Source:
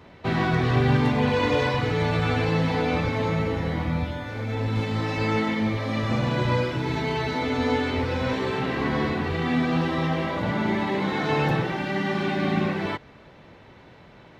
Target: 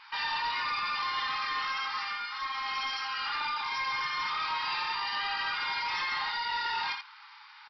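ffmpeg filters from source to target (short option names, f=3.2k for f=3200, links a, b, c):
-filter_complex "[0:a]atempo=0.77,afftfilt=real='re*between(b*sr/4096,330,2600)':imag='im*between(b*sr/4096,330,2600)':win_size=4096:overlap=0.75,alimiter=limit=-21.5dB:level=0:latency=1:release=13,asplit=2[a][b];[b]asoftclip=type=hard:threshold=-35.5dB,volume=-11.5dB[c];[a][c]amix=inputs=2:normalize=0,aecho=1:1:67.06|207:0.562|0.501,asetrate=107163,aresample=44100,aresample=11025,asoftclip=type=tanh:threshold=-23dB,aresample=44100,volume=-3dB"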